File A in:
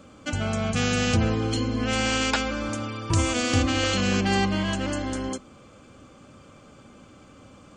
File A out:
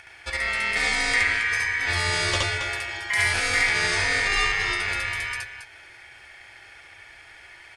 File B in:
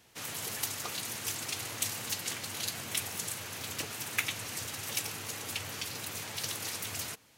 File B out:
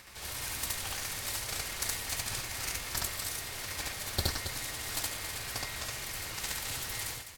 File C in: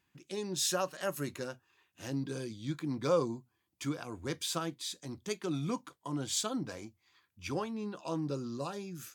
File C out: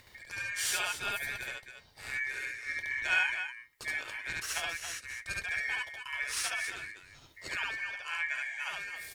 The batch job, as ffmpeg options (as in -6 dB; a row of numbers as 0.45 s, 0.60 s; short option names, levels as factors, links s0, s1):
-filter_complex "[0:a]acompressor=mode=upward:threshold=0.00794:ratio=2.5,aeval=exprs='val(0)*sin(2*PI*2000*n/s)':c=same,lowshelf=f=140:t=q:w=1.5:g=8.5,asplit=2[s0][s1];[s1]aecho=0:1:69.97|274.1:1|0.398[s2];[s0][s2]amix=inputs=2:normalize=0"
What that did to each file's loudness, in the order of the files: +2.5 LU, +0.5 LU, +2.5 LU